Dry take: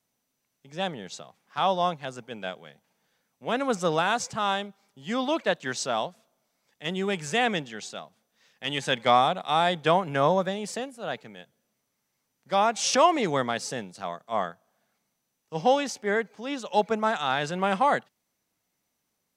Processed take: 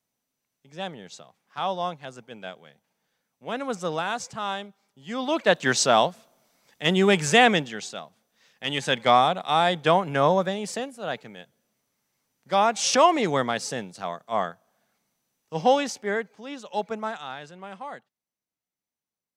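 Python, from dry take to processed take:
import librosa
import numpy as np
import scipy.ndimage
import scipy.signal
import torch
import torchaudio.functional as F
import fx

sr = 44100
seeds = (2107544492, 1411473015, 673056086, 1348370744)

y = fx.gain(x, sr, db=fx.line((5.13, -3.5), (5.63, 9.0), (7.3, 9.0), (7.93, 2.0), (15.82, 2.0), (16.52, -5.0), (17.04, -5.0), (17.55, -15.0)))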